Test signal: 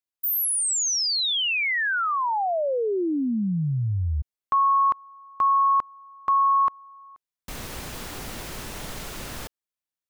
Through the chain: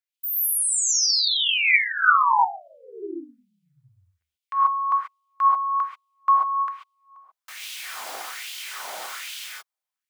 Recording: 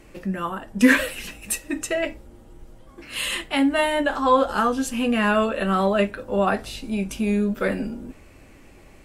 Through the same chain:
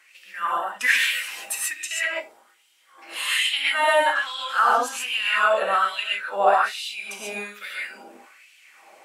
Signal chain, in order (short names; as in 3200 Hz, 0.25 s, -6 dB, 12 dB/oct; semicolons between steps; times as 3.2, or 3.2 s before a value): non-linear reverb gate 0.16 s rising, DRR -3 dB; LFO high-pass sine 1.2 Hz 680–3000 Hz; gain -3.5 dB